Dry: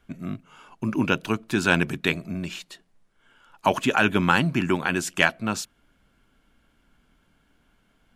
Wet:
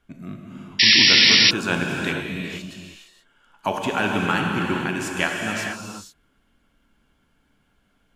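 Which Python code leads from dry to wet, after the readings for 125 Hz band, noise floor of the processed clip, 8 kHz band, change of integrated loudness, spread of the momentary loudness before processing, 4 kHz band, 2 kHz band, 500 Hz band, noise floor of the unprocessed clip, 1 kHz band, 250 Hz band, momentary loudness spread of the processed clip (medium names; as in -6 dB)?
-1.5 dB, -66 dBFS, +6.5 dB, +6.5 dB, 14 LU, +15.5 dB, +4.0 dB, -1.0 dB, -66 dBFS, -1.0 dB, -1.0 dB, 22 LU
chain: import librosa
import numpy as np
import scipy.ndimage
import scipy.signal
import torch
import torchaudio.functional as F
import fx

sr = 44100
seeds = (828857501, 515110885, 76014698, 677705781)

y = fx.rev_gated(x, sr, seeds[0], gate_ms=500, shape='flat', drr_db=0.0)
y = fx.spec_paint(y, sr, seeds[1], shape='noise', start_s=0.79, length_s=0.72, low_hz=1700.0, high_hz=5700.0, level_db=-10.0)
y = y * 10.0 ** (-4.0 / 20.0)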